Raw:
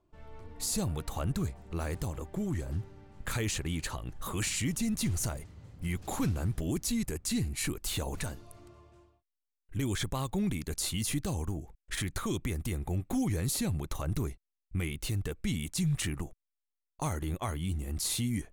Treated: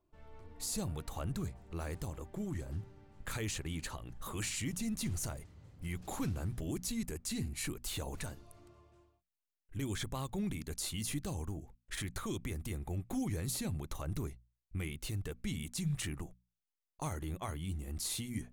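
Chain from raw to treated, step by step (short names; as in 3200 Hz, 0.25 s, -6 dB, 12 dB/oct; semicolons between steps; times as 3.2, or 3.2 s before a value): notches 60/120/180/240 Hz; gain -5.5 dB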